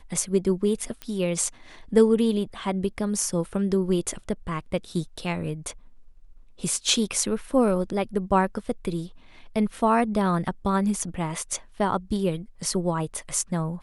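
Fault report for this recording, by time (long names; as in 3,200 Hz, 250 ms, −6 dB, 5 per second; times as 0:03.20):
0:01.02: click −18 dBFS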